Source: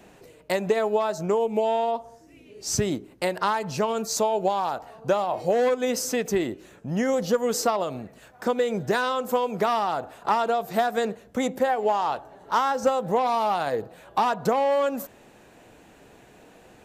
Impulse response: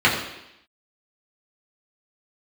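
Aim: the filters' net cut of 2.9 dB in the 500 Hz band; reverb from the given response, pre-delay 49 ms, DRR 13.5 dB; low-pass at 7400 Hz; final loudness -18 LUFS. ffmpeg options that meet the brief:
-filter_complex "[0:a]lowpass=7.4k,equalizer=f=500:t=o:g=-3.5,asplit=2[a][b];[1:a]atrim=start_sample=2205,adelay=49[c];[b][c]afir=irnorm=-1:irlink=0,volume=-35dB[d];[a][d]amix=inputs=2:normalize=0,volume=9dB"

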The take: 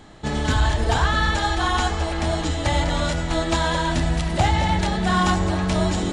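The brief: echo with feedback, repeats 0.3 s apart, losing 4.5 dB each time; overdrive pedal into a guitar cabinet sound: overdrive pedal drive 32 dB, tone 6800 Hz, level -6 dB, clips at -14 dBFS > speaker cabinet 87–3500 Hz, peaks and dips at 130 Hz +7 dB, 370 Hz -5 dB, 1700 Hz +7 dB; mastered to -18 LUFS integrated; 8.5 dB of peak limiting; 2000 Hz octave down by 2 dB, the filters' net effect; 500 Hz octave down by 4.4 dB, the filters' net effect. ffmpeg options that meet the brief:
-filter_complex "[0:a]equalizer=f=500:t=o:g=-4.5,equalizer=f=2k:t=o:g=-9,alimiter=limit=-19.5dB:level=0:latency=1,aecho=1:1:300|600|900|1200|1500|1800|2100|2400|2700:0.596|0.357|0.214|0.129|0.0772|0.0463|0.0278|0.0167|0.01,asplit=2[a][b];[b]highpass=f=720:p=1,volume=32dB,asoftclip=type=tanh:threshold=-14dB[c];[a][c]amix=inputs=2:normalize=0,lowpass=f=6.8k:p=1,volume=-6dB,highpass=87,equalizer=f=130:t=q:w=4:g=7,equalizer=f=370:t=q:w=4:g=-5,equalizer=f=1.7k:t=q:w=4:g=7,lowpass=f=3.5k:w=0.5412,lowpass=f=3.5k:w=1.3066,volume=1.5dB"

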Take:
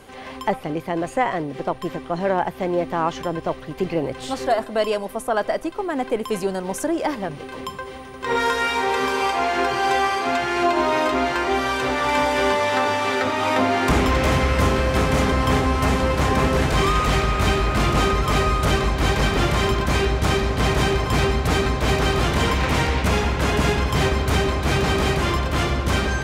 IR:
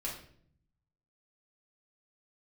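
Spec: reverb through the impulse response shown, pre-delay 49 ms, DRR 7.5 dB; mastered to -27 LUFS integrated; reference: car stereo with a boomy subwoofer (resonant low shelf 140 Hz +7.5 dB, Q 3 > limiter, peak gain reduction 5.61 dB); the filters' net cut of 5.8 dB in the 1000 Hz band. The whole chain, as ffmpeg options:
-filter_complex "[0:a]equalizer=f=1k:t=o:g=-7.5,asplit=2[a][b];[1:a]atrim=start_sample=2205,adelay=49[c];[b][c]afir=irnorm=-1:irlink=0,volume=-9dB[d];[a][d]amix=inputs=2:normalize=0,lowshelf=f=140:t=q:w=3:g=7.5,volume=-9.5dB,alimiter=limit=-15dB:level=0:latency=1"

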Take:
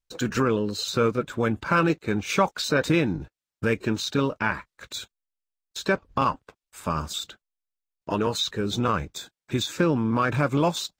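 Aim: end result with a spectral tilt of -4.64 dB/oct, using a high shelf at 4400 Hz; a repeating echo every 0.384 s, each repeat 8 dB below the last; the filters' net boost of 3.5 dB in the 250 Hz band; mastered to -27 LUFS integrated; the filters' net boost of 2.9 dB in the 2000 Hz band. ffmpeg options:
-af "equalizer=f=250:t=o:g=4.5,equalizer=f=2k:t=o:g=5,highshelf=f=4.4k:g=-5,aecho=1:1:384|768|1152|1536|1920:0.398|0.159|0.0637|0.0255|0.0102,volume=-3.5dB"

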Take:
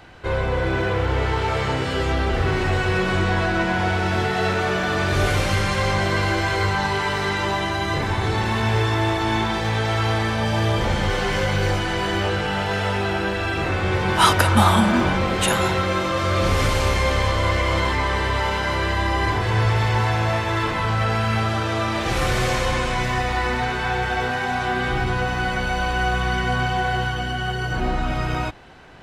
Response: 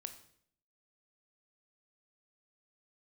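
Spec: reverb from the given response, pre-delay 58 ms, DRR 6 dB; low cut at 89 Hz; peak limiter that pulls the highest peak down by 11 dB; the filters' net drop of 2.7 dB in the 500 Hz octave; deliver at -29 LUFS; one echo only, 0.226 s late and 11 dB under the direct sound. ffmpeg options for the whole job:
-filter_complex "[0:a]highpass=89,equalizer=f=500:t=o:g=-3.5,alimiter=limit=-14dB:level=0:latency=1,aecho=1:1:226:0.282,asplit=2[a][b];[1:a]atrim=start_sample=2205,adelay=58[c];[b][c]afir=irnorm=-1:irlink=0,volume=-2dB[d];[a][d]amix=inputs=2:normalize=0,volume=-6.5dB"

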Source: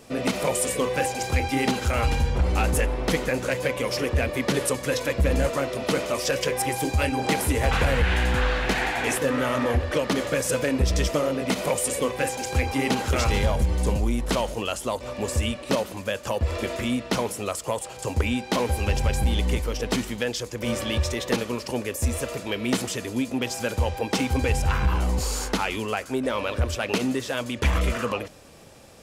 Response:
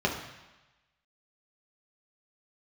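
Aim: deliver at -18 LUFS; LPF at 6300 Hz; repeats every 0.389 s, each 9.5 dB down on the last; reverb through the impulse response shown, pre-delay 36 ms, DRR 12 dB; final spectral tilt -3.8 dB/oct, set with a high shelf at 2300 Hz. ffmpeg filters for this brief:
-filter_complex "[0:a]lowpass=6.3k,highshelf=f=2.3k:g=9,aecho=1:1:389|778|1167|1556:0.335|0.111|0.0365|0.012,asplit=2[a][b];[1:a]atrim=start_sample=2205,adelay=36[c];[b][c]afir=irnorm=-1:irlink=0,volume=-23.5dB[d];[a][d]amix=inputs=2:normalize=0,volume=5dB"

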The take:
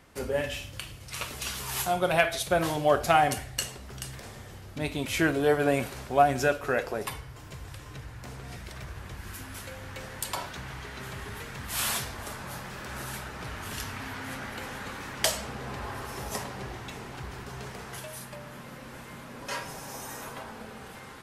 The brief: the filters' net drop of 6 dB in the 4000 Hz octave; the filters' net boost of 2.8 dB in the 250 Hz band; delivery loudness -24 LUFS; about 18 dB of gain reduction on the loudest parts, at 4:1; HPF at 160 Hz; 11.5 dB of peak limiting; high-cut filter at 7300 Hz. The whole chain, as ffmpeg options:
-af "highpass=160,lowpass=7.3k,equalizer=f=250:t=o:g=4.5,equalizer=f=4k:t=o:g=-8,acompressor=threshold=-39dB:ratio=4,volume=19.5dB,alimiter=limit=-13dB:level=0:latency=1"

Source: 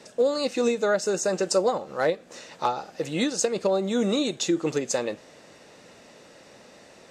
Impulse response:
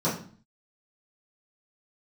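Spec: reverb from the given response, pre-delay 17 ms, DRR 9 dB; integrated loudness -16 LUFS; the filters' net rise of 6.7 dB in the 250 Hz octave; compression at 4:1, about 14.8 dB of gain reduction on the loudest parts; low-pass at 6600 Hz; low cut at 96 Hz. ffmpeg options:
-filter_complex "[0:a]highpass=96,lowpass=6.6k,equalizer=f=250:t=o:g=8.5,acompressor=threshold=-33dB:ratio=4,asplit=2[a][b];[1:a]atrim=start_sample=2205,adelay=17[c];[b][c]afir=irnorm=-1:irlink=0,volume=-21dB[d];[a][d]amix=inputs=2:normalize=0,volume=17.5dB"

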